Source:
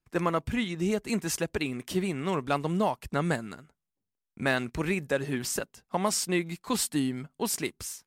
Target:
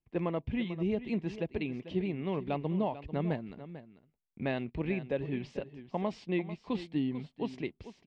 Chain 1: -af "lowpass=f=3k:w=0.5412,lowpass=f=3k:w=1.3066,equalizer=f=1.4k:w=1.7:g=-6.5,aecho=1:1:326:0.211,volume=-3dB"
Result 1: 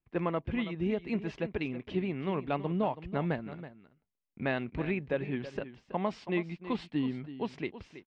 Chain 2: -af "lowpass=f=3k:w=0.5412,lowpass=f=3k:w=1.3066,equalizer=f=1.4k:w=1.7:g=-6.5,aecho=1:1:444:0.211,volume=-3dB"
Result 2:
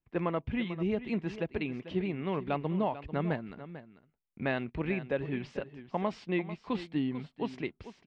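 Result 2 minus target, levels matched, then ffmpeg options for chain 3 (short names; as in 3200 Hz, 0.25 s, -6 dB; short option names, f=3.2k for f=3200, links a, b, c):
1000 Hz band +2.5 dB
-af "lowpass=f=3k:w=0.5412,lowpass=f=3k:w=1.3066,equalizer=f=1.4k:w=1.7:g=-16,aecho=1:1:444:0.211,volume=-3dB"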